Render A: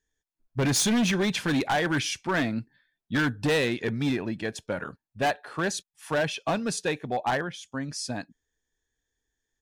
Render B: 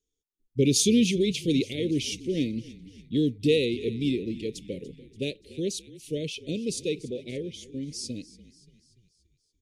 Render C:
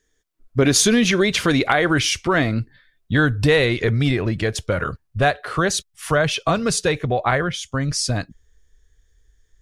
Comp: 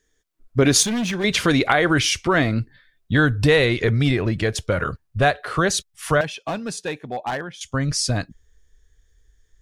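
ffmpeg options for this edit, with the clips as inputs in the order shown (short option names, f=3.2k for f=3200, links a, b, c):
-filter_complex "[0:a]asplit=2[a][b];[2:a]asplit=3[c][d][e];[c]atrim=end=0.832[f];[a]atrim=start=0.828:end=1.242[g];[d]atrim=start=1.238:end=6.212[h];[b]atrim=start=6.208:end=7.612[i];[e]atrim=start=7.608[j];[f][g]acrossfade=d=0.004:c1=hsin:c2=hsin[k];[k][h]acrossfade=d=0.004:c1=hsin:c2=hsin[l];[l][i]acrossfade=d=0.004:c1=hsin:c2=hsin[m];[m][j]acrossfade=d=0.004:c1=hsin:c2=hsin"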